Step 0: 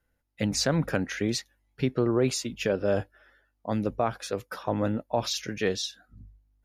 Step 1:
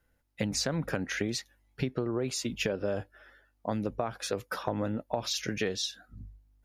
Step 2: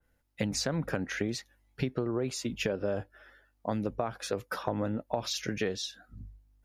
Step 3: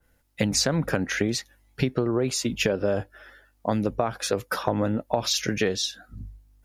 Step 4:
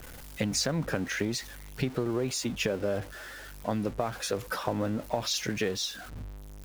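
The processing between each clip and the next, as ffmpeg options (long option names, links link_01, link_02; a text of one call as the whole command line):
ffmpeg -i in.wav -af "acompressor=threshold=-30dB:ratio=10,volume=3dB" out.wav
ffmpeg -i in.wav -af "adynamicequalizer=threshold=0.00501:dfrequency=2000:dqfactor=0.7:tfrequency=2000:tqfactor=0.7:attack=5:release=100:ratio=0.375:range=2.5:mode=cutabove:tftype=highshelf" out.wav
ffmpeg -i in.wav -af "equalizer=frequency=13000:width_type=o:width=2.2:gain=4,volume=7dB" out.wav
ffmpeg -i in.wav -af "aeval=exprs='val(0)+0.5*0.0224*sgn(val(0))':channel_layout=same,volume=-6.5dB" out.wav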